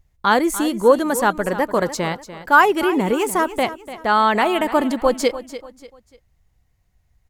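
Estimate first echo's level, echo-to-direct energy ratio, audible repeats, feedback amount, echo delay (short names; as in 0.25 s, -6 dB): -14.0 dB, -13.5 dB, 3, 35%, 0.294 s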